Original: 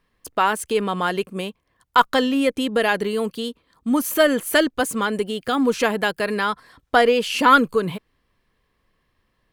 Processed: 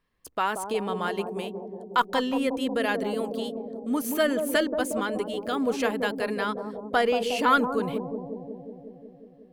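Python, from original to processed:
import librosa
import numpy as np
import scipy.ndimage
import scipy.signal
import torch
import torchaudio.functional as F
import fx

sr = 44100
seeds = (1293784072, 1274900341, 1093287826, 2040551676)

y = fx.echo_bbd(x, sr, ms=181, stages=1024, feedback_pct=74, wet_db=-5.5)
y = y * librosa.db_to_amplitude(-7.5)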